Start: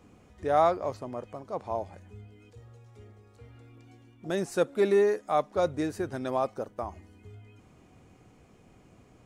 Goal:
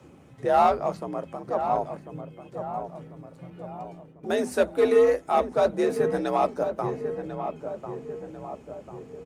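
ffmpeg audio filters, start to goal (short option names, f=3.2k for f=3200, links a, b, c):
-filter_complex "[0:a]asettb=1/sr,asplit=3[a][b][c];[a]atrim=end=3.504[d];[b]atrim=start=3.5:end=4.61,asetpts=PTS-STARTPTS,afade=t=in:d=0.004:c=qsin,afade=t=out:st=1.106:d=0.004:c=qsin,agate=range=-55dB:threshold=-53dB:ratio=16:detection=peak[e];[c]atrim=start=4.606[f];[d][e]acrossfade=d=0.004:c1=hsin:c2=qsin[g];[g][f]acrossfade=d=0.004:c1=qsin:c2=hsin,asplit=2[h][i];[i]aeval=exprs='0.0794*(abs(mod(val(0)/0.0794+3,4)-2)-1)':c=same,volume=-10dB[j];[h][j]amix=inputs=2:normalize=0,lowshelf=f=86:g=6.5,flanger=delay=2.1:depth=7.6:regen=-61:speed=1.9:shape=sinusoidal,afreqshift=57,bandreject=f=50:t=h:w=6,bandreject=f=100:t=h:w=6,bandreject=f=150:t=h:w=6,bandreject=f=200:t=h:w=6,bandreject=f=250:t=h:w=6,asplit=2[k][l];[l]adelay=1045,lowpass=f=1.4k:p=1,volume=-8dB,asplit=2[m][n];[n]adelay=1045,lowpass=f=1.4k:p=1,volume=0.54,asplit=2[o][p];[p]adelay=1045,lowpass=f=1.4k:p=1,volume=0.54,asplit=2[q][r];[r]adelay=1045,lowpass=f=1.4k:p=1,volume=0.54,asplit=2[s][t];[t]adelay=1045,lowpass=f=1.4k:p=1,volume=0.54,asplit=2[u][v];[v]adelay=1045,lowpass=f=1.4k:p=1,volume=0.54[w];[m][o][q][s][u][w]amix=inputs=6:normalize=0[x];[k][x]amix=inputs=2:normalize=0,volume=6.5dB" -ar 48000 -c:a libopus -b:a 48k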